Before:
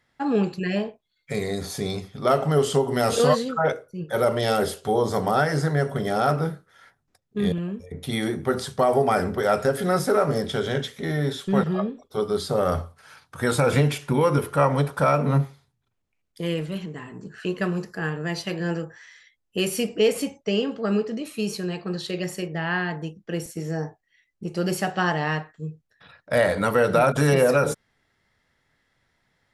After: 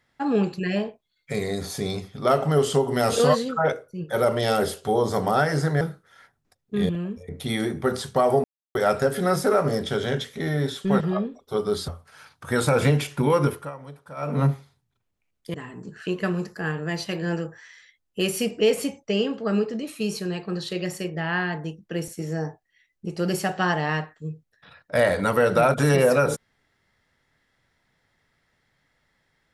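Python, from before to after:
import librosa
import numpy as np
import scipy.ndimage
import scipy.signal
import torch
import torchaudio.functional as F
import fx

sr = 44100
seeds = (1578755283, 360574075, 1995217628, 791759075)

y = fx.edit(x, sr, fx.cut(start_s=5.81, length_s=0.63),
    fx.silence(start_s=9.07, length_s=0.31),
    fx.cut(start_s=12.51, length_s=0.28),
    fx.fade_down_up(start_s=14.37, length_s=0.95, db=-19.5, fade_s=0.25),
    fx.cut(start_s=16.45, length_s=0.47), tone=tone)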